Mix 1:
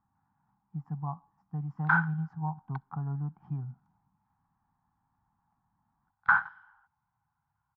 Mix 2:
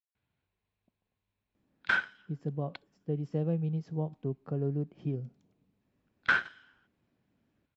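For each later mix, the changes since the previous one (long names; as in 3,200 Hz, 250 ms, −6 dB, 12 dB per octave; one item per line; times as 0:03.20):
speech: entry +1.55 s
master: remove drawn EQ curve 170 Hz 0 dB, 550 Hz −28 dB, 820 Hz +15 dB, 1,400 Hz +5 dB, 2,700 Hz −20 dB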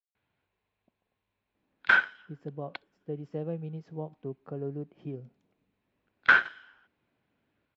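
background +6.5 dB
master: add bass and treble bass −8 dB, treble −8 dB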